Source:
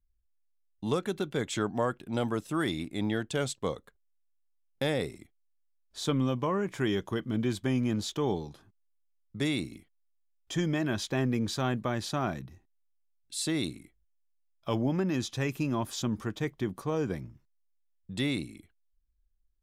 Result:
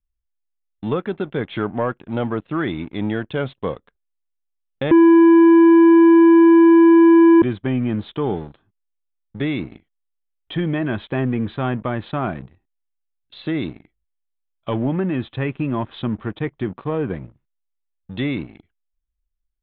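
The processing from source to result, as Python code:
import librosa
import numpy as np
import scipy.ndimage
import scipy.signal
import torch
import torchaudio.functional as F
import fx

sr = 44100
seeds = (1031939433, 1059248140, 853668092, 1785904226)

y = fx.edit(x, sr, fx.bleep(start_s=4.91, length_s=2.51, hz=333.0, db=-8.0), tone=tone)
y = fx.leveller(y, sr, passes=2)
y = fx.env_lowpass_down(y, sr, base_hz=2600.0, full_db=-22.0)
y = scipy.signal.sosfilt(scipy.signal.butter(12, 3700.0, 'lowpass', fs=sr, output='sos'), y)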